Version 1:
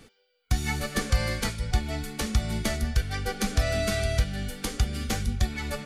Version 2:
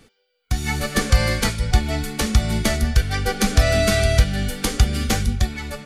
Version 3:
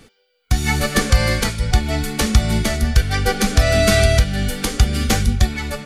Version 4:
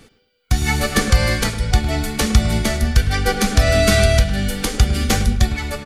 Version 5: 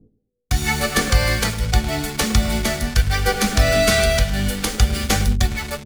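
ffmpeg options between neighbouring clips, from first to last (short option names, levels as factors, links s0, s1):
-af "dynaudnorm=f=130:g=11:m=3.76"
-af "alimiter=limit=0.422:level=0:latency=1:release=460,volume=1.78"
-filter_complex "[0:a]asplit=2[s0][s1];[s1]adelay=106,lowpass=f=1600:p=1,volume=0.282,asplit=2[s2][s3];[s3]adelay=106,lowpass=f=1600:p=1,volume=0.35,asplit=2[s4][s5];[s5]adelay=106,lowpass=f=1600:p=1,volume=0.35,asplit=2[s6][s7];[s7]adelay=106,lowpass=f=1600:p=1,volume=0.35[s8];[s0][s2][s4][s6][s8]amix=inputs=5:normalize=0"
-filter_complex "[0:a]acrossover=split=430[s0][s1];[s0]flanger=delay=18.5:depth=3.7:speed=0.61[s2];[s1]acrusher=bits=4:mix=0:aa=0.5[s3];[s2][s3]amix=inputs=2:normalize=0"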